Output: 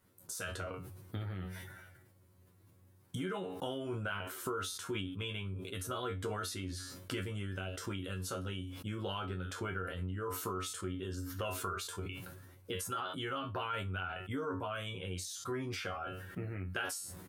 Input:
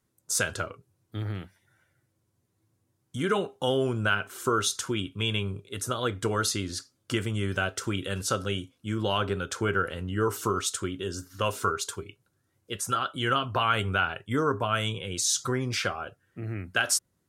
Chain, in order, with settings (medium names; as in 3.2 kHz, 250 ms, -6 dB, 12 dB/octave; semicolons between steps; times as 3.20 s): treble shelf 9.4 kHz +4 dB; feedback comb 92 Hz, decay 0.18 s, harmonics all, mix 100%; compression 5:1, threshold -53 dBFS, peak gain reduction 23 dB; peaking EQ 6.8 kHz -8 dB 1.3 oct; doubling 24 ms -14 dB; decay stretcher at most 36 dB/s; trim +14 dB